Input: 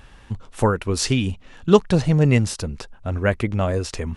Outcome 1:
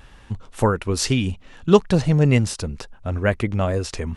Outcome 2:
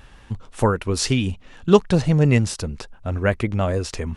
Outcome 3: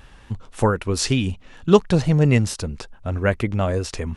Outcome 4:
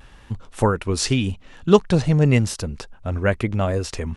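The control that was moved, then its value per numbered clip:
vibrato, rate: 2.2 Hz, 6.7 Hz, 4.5 Hz, 0.88 Hz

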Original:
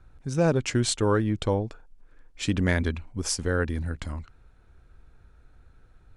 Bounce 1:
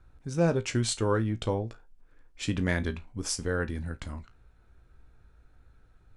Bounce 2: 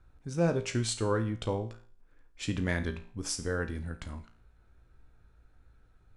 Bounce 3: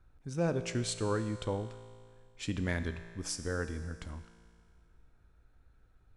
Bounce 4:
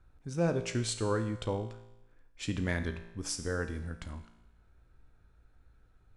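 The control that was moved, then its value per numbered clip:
feedback comb, decay: 0.18 s, 0.45 s, 2.1 s, 0.93 s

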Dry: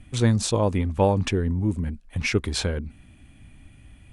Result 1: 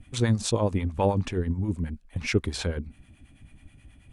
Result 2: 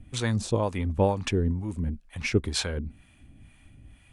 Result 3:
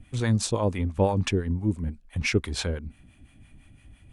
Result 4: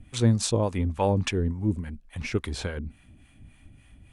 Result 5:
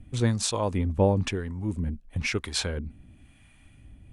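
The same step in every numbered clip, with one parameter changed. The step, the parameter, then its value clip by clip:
harmonic tremolo, rate: 9.3 Hz, 2.1 Hz, 5.9 Hz, 3.5 Hz, 1 Hz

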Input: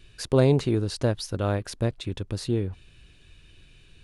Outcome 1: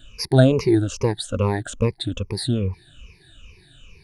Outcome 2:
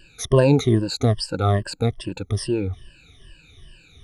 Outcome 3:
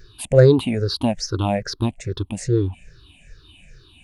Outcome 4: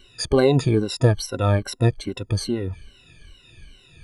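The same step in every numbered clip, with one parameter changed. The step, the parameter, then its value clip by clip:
drifting ripple filter, ripples per octave: 0.83, 1.3, 0.56, 2.1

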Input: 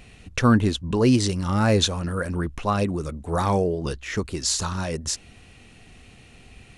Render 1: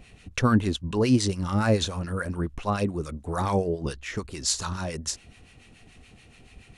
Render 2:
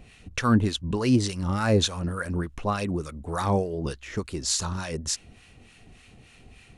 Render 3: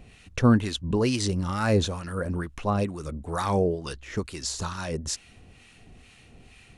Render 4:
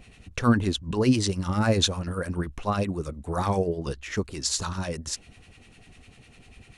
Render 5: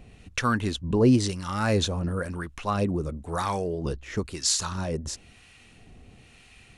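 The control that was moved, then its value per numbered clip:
harmonic tremolo, rate: 7 Hz, 3.4 Hz, 2.2 Hz, 10 Hz, 1 Hz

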